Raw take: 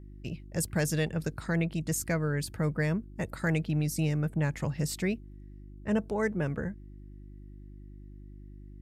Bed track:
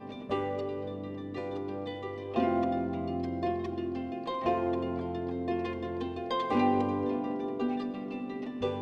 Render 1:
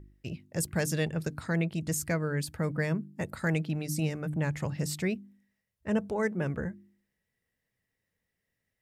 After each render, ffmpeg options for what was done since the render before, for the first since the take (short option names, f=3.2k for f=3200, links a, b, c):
-af "bandreject=f=50:t=h:w=4,bandreject=f=100:t=h:w=4,bandreject=f=150:t=h:w=4,bandreject=f=200:t=h:w=4,bandreject=f=250:t=h:w=4,bandreject=f=300:t=h:w=4,bandreject=f=350:t=h:w=4"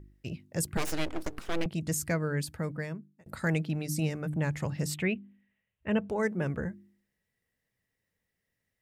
-filter_complex "[0:a]asettb=1/sr,asplit=3[a][b][c];[a]atrim=end=0.774[d];[b]atrim=start=0.77:end=1.66,asetpts=PTS-STARTPTS,afade=t=in:d=0.004:c=qsin,afade=t=out:st=0.886:d=0.004:c=qsin,aeval=exprs='abs(val(0))':c=same[e];[c]atrim=start=1.656[f];[d][e]acrossfade=d=0.004:c1=hsin:c2=qsin[g];[g][f]acrossfade=d=0.004:c1=qsin:c2=hsin,asettb=1/sr,asplit=3[h][i][j];[h]atrim=end=4.944[k];[i]atrim=start=4.94:end=6.1,asetpts=PTS-STARTPTS,afade=t=in:d=0.004:c=qsin,afade=t=out:st=1.156:d=0.004:c=qsin,highshelf=f=3.8k:t=q:w=3:g=-10[l];[j]atrim=start=6.096[m];[k][l]acrossfade=d=0.004:c1=hsin:c2=qsin[n];[n][m]acrossfade=d=0.004:c1=qsin:c2=hsin,asplit=2[o][p];[o]atrim=end=3.26,asetpts=PTS-STARTPTS,afade=t=out:st=2.38:d=0.88[q];[p]atrim=start=3.26,asetpts=PTS-STARTPTS,afade=t=in:d=0.004:c=hsin[r];[q][r]concat=n=2:v=0:a=1"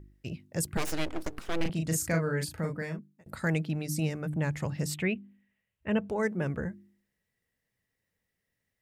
-filter_complex "[0:a]asettb=1/sr,asplit=3[a][b][c];[a]atrim=end=1.574[d];[b]atrim=start=1.57:end=2.99,asetpts=PTS-STARTPTS,afade=t=in:d=0.004:c=qsin,afade=t=out:st=1.416:d=0.004:c=qsin,asplit=2[e][f];[f]adelay=37,volume=-4dB[g];[e][g]amix=inputs=2:normalize=0,atrim=end_sample=62622[h];[c]atrim=start=2.986[i];[d][h]acrossfade=d=0.004:c1=hsin:c2=qsin[j];[j][i]acrossfade=d=0.004:c1=qsin:c2=hsin"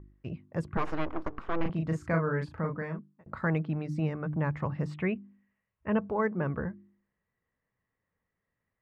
-af "lowpass=1.8k,equalizer=f=1.1k:t=o:w=0.54:g=9"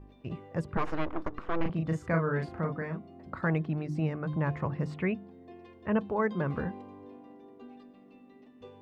-filter_complex "[1:a]volume=-18dB[a];[0:a][a]amix=inputs=2:normalize=0"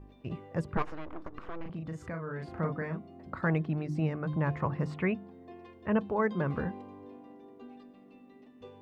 -filter_complex "[0:a]asettb=1/sr,asplit=3[a][b][c];[a]atrim=end=0.824[d];[b]atrim=start=0.82:end=2.55,asetpts=PTS-STARTPTS,afade=t=in:d=0.004:c=qsin,afade=t=out:st=1.726:d=0.004:c=qsin,acompressor=threshold=-37dB:ratio=3:attack=3.2:release=140:knee=1:detection=peak[e];[c]atrim=start=2.546[f];[d][e]acrossfade=d=0.004:c1=hsin:c2=qsin[g];[g][f]acrossfade=d=0.004:c1=qsin:c2=hsin,asettb=1/sr,asplit=3[h][i][j];[h]atrim=end=4.604[k];[i]atrim=start=4.6:end=5.71,asetpts=PTS-STARTPTS,afade=t=in:d=0.004:c=qsin,afade=t=out:st=1.106:d=0.004:c=qsin,equalizer=f=1.1k:w=1.2:g=4[l];[j]atrim=start=5.706[m];[k][l]acrossfade=d=0.004:c1=hsin:c2=qsin[n];[n][m]acrossfade=d=0.004:c1=qsin:c2=hsin"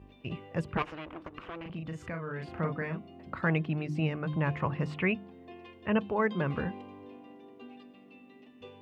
-af "highpass=49,equalizer=f=2.8k:w=1.8:g=10.5"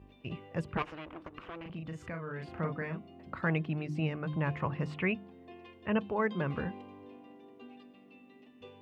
-af "volume=-2.5dB"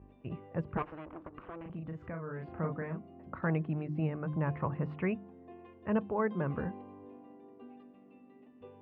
-af "lowpass=1.4k"